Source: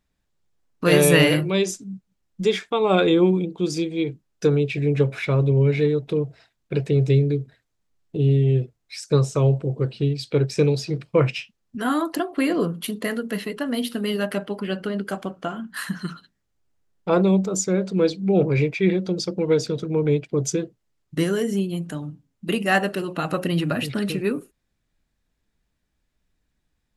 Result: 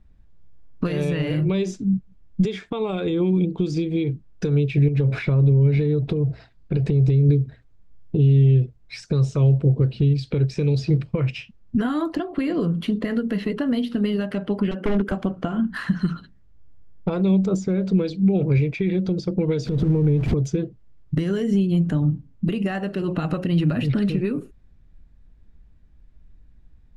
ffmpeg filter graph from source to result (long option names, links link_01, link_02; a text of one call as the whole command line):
ffmpeg -i in.wav -filter_complex "[0:a]asettb=1/sr,asplit=3[link_01][link_02][link_03];[link_01]atrim=end=4.884[link_04];[link_02]atrim=start=4.88:end=7.29,asetpts=PTS-STARTPTS,afade=type=in:duration=0.004:curve=qsin,afade=type=out:start_time=2.406:duration=0.004:curve=qsin,equalizer=frequency=4600:width_type=o:width=0.34:gain=5.5,acompressor=threshold=-26dB:ratio=5:attack=3.2:release=140:knee=1:detection=peak[link_05];[link_03]atrim=start=7.286[link_06];[link_04][link_05]acrossfade=duration=0.004:curve1=hsin:curve2=qsin[link_07];[link_07][link_06]acrossfade=duration=0.004:curve1=qsin:curve2=hsin,asettb=1/sr,asplit=3[link_08][link_09][link_10];[link_08]atrim=end=14.714[link_11];[link_09]atrim=start=14.71:end=15.12,asetpts=PTS-STARTPTS,afade=type=in:duration=0.004:curve=qsin,afade=type=out:start_time=0.406:duration=0.004:curve=qsin,highpass=frequency=220:width=0.5412,highpass=frequency=220:width=1.3066,equalizer=frequency=4400:width=4.6:gain=-14,aeval=exprs='0.0631*(abs(mod(val(0)/0.0631+3,4)-2)-1)':channel_layout=same[link_12];[link_10]atrim=start=15.116[link_13];[link_11][link_12]acrossfade=duration=0.004:curve1=hsin:curve2=qsin[link_14];[link_14][link_13]acrossfade=duration=0.004:curve1=qsin:curve2=hsin,asettb=1/sr,asplit=3[link_15][link_16][link_17];[link_15]atrim=end=19.644[link_18];[link_16]atrim=start=19.64:end=20.34,asetpts=PTS-STARTPTS,afade=type=in:duration=0.004:curve=qsin,afade=type=out:start_time=0.696:duration=0.004:curve=qsin,aeval=exprs='val(0)+0.5*0.0211*sgn(val(0))':channel_layout=same,lowshelf=frequency=360:gain=5.5,acompressor=threshold=-31dB:ratio=4:attack=3.2:release=140:knee=1:detection=peak[link_19];[link_17]atrim=start=20.336[link_20];[link_18][link_19]acrossfade=duration=0.004:curve1=hsin:curve2=qsin[link_21];[link_21][link_20]acrossfade=duration=0.004:curve1=qsin:curve2=hsin,acrossover=split=2300|6500[link_22][link_23][link_24];[link_22]acompressor=threshold=-30dB:ratio=4[link_25];[link_23]acompressor=threshold=-35dB:ratio=4[link_26];[link_24]acompressor=threshold=-48dB:ratio=4[link_27];[link_25][link_26][link_27]amix=inputs=3:normalize=0,alimiter=level_in=1dB:limit=-24dB:level=0:latency=1:release=169,volume=-1dB,aemphasis=mode=reproduction:type=riaa,volume=6.5dB" out.wav